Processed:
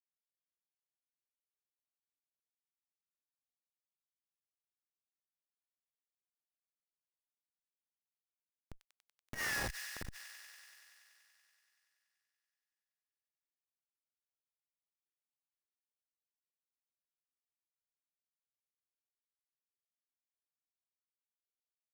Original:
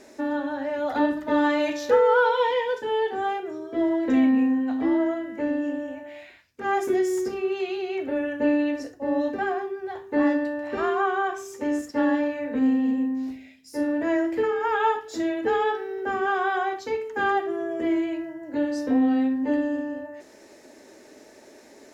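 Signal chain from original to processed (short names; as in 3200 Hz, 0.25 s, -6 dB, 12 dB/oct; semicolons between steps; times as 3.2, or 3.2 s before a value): Doppler pass-by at 9.49, 27 m/s, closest 2.4 m; elliptic band-pass 1400–4900 Hz, stop band 50 dB; tilt +4.5 dB/oct; in parallel at +2.5 dB: compressor 16:1, threshold -59 dBFS, peak gain reduction 30 dB; on the sum: Schmitt trigger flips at -39 dBFS; on a send: thin delay 95 ms, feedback 82%, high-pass 2300 Hz, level -4.5 dB; on the sum: core saturation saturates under 150 Hz; gain +14.5 dB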